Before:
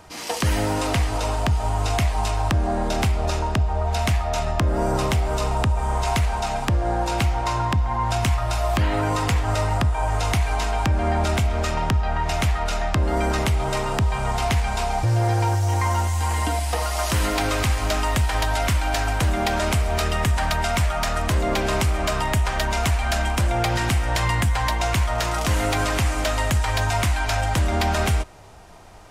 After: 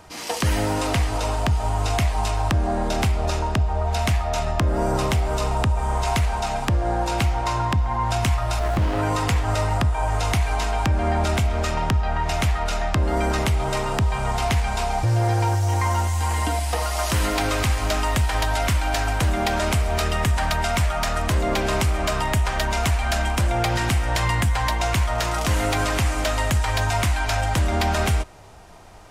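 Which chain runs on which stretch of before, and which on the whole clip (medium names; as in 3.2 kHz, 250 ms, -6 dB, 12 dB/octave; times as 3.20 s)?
8.59–8.99 s: short-mantissa float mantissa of 6-bit + sliding maximum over 17 samples
whole clip: none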